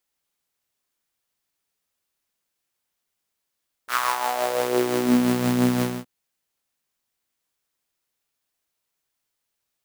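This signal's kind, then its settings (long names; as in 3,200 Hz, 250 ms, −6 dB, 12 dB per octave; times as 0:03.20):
subtractive patch with tremolo B2, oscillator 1 saw, interval 0 semitones, detune 16 cents, noise −14 dB, filter highpass, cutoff 170 Hz, Q 4.2, filter envelope 3 octaves, filter decay 1.36 s, filter sustain 10%, attack 73 ms, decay 0.23 s, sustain −5 dB, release 0.23 s, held 1.94 s, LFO 5.8 Hz, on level 4 dB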